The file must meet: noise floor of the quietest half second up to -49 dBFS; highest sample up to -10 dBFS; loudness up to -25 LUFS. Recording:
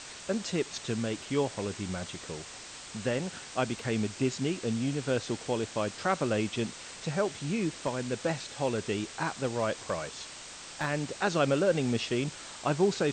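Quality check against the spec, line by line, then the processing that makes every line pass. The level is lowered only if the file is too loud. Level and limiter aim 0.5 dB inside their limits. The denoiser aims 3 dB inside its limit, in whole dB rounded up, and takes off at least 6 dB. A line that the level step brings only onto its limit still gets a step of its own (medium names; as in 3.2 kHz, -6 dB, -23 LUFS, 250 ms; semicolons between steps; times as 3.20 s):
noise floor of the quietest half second -45 dBFS: fail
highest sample -14.5 dBFS: pass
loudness -32.0 LUFS: pass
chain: noise reduction 7 dB, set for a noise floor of -45 dBFS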